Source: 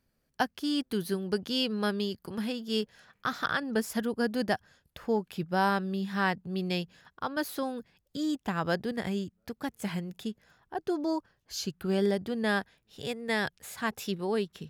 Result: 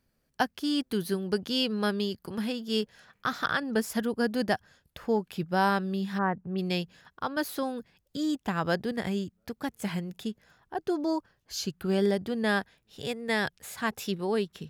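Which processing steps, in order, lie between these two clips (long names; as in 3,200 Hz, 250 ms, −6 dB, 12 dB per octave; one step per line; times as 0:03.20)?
0:06.17–0:06.57: low-pass filter 1,200 Hz → 2,600 Hz 24 dB per octave
level +1.5 dB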